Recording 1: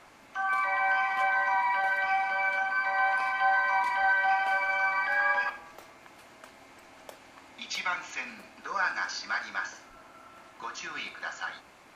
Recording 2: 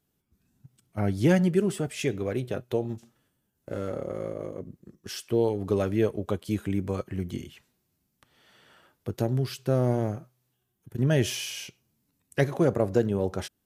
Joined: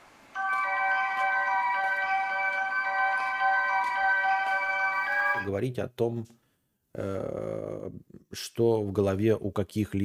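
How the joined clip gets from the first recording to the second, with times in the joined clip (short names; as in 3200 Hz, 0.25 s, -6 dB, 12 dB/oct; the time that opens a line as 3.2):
recording 1
4.93–5.5 block floating point 7-bit
5.42 switch to recording 2 from 2.15 s, crossfade 0.16 s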